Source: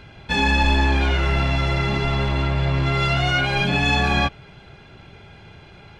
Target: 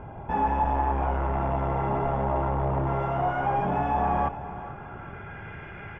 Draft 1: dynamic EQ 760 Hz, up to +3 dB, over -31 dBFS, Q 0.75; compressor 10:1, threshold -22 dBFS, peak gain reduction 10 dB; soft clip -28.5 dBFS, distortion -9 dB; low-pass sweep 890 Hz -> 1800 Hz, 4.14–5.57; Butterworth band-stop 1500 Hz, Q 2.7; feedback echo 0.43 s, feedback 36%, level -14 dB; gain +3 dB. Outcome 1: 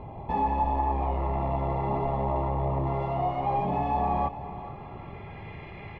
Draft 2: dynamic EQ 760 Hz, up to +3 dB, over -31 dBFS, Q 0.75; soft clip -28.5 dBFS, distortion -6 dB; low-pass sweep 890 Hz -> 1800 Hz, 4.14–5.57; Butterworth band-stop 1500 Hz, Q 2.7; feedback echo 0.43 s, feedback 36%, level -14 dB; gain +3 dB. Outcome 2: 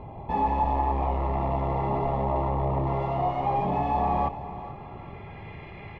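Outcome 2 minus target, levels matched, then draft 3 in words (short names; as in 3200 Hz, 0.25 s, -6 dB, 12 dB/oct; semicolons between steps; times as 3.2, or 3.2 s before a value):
2000 Hz band -6.5 dB
dynamic EQ 760 Hz, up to +3 dB, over -31 dBFS, Q 0.75; soft clip -28.5 dBFS, distortion -6 dB; low-pass sweep 890 Hz -> 1800 Hz, 4.14–5.57; Butterworth band-stop 4200 Hz, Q 2.7; feedback echo 0.43 s, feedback 36%, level -14 dB; gain +3 dB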